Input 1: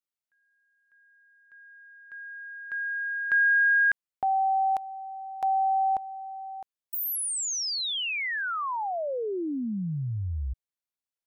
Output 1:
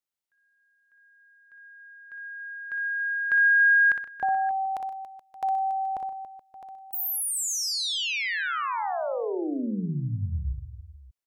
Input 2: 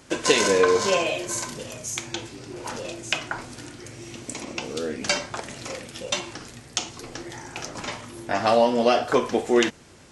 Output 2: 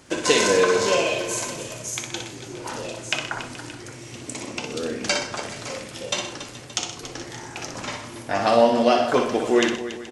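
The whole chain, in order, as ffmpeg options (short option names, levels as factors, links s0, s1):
-af "aecho=1:1:60|124|158|281|426|574:0.501|0.224|0.112|0.224|0.119|0.126"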